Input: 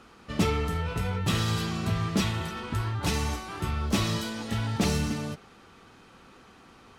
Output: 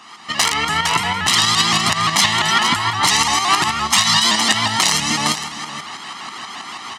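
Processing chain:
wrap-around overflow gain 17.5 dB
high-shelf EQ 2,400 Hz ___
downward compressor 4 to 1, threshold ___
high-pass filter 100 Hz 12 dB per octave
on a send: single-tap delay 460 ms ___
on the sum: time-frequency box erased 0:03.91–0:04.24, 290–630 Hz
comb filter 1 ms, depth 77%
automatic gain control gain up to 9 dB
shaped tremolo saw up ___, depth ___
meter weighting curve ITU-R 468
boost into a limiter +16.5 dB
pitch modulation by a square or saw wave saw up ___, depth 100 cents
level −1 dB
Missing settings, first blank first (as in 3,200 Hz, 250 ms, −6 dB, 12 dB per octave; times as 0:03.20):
−10 dB, −33 dBFS, −13 dB, 6.2 Hz, 50%, 5.8 Hz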